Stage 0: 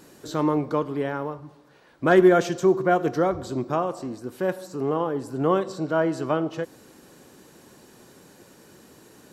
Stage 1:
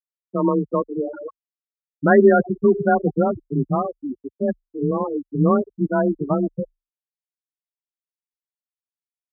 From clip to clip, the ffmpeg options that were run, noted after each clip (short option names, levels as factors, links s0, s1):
-af "afftfilt=real='re*gte(hypot(re,im),0.2)':imag='im*gte(hypot(re,im),0.2)':win_size=1024:overlap=0.75,afreqshift=26,asubboost=boost=6:cutoff=180,volume=1.68"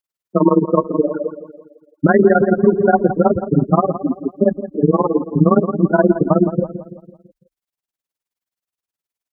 -filter_complex "[0:a]tremolo=f=19:d=0.93,asplit=2[s0][s1];[s1]adelay=167,lowpass=f=1600:p=1,volume=0.237,asplit=2[s2][s3];[s3]adelay=167,lowpass=f=1600:p=1,volume=0.49,asplit=2[s4][s5];[s5]adelay=167,lowpass=f=1600:p=1,volume=0.49,asplit=2[s6][s7];[s7]adelay=167,lowpass=f=1600:p=1,volume=0.49,asplit=2[s8][s9];[s9]adelay=167,lowpass=f=1600:p=1,volume=0.49[s10];[s0][s2][s4][s6][s8][s10]amix=inputs=6:normalize=0,alimiter=level_in=4.22:limit=0.891:release=50:level=0:latency=1,volume=0.891"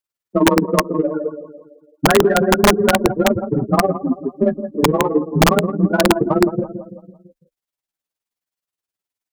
-filter_complex "[0:a]asplit=2[s0][s1];[s1]asoftclip=type=tanh:threshold=0.188,volume=0.299[s2];[s0][s2]amix=inputs=2:normalize=0,flanger=delay=8.5:depth=5.3:regen=12:speed=0.31:shape=sinusoidal,aeval=exprs='(mod(1.88*val(0)+1,2)-1)/1.88':c=same,volume=1.12"